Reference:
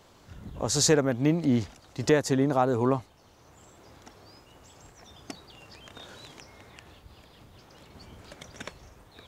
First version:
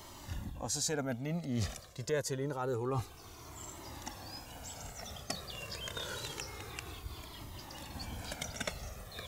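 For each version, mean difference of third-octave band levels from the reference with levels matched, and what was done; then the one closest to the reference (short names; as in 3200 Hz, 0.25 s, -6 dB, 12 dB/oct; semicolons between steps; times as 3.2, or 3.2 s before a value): 13.0 dB: high shelf 7400 Hz +11.5 dB; reverse; compressor 6:1, threshold -37 dBFS, peak gain reduction 20 dB; reverse; cascading flanger falling 0.27 Hz; gain +9 dB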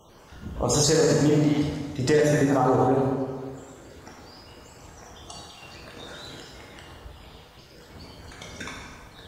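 5.0 dB: random spectral dropouts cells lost 38%; plate-style reverb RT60 1.6 s, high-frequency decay 0.75×, DRR -3.5 dB; limiter -14.5 dBFS, peak gain reduction 9 dB; gain +3 dB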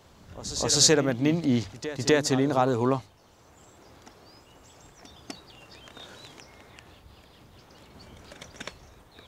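2.0 dB: notches 50/100/150 Hz; dynamic EQ 4200 Hz, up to +7 dB, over -47 dBFS, Q 0.71; on a send: reverse echo 0.25 s -13 dB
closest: third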